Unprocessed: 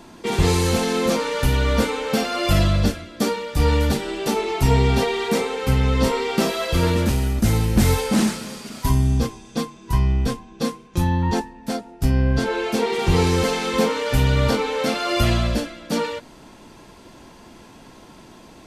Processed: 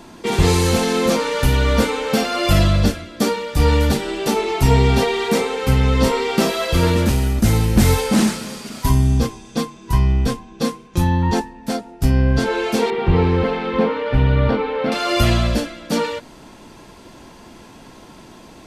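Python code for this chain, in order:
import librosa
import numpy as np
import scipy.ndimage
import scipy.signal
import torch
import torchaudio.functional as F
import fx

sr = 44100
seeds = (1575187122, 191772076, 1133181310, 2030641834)

y = fx.air_absorb(x, sr, metres=420.0, at=(12.9, 14.92))
y = y * 10.0 ** (3.0 / 20.0)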